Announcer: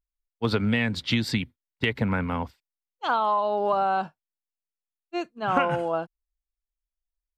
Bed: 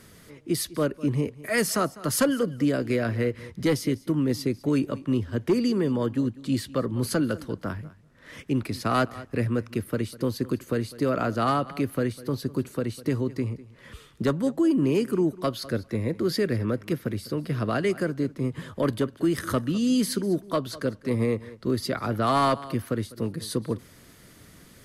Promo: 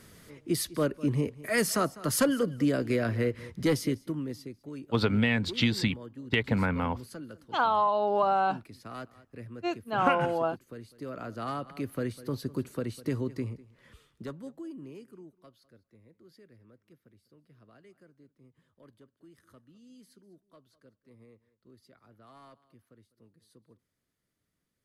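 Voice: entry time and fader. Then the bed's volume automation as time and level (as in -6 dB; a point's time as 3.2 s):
4.50 s, -1.5 dB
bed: 3.85 s -2.5 dB
4.58 s -18 dB
10.71 s -18 dB
12.17 s -5 dB
13.36 s -5 dB
15.74 s -32 dB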